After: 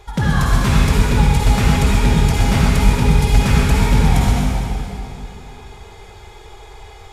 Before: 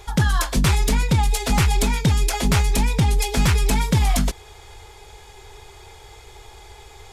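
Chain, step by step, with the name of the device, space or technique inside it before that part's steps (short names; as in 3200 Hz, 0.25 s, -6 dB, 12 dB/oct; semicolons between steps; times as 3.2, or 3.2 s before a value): swimming-pool hall (reverb RT60 2.9 s, pre-delay 47 ms, DRR -5.5 dB; high shelf 3700 Hz -7.5 dB); gain -1 dB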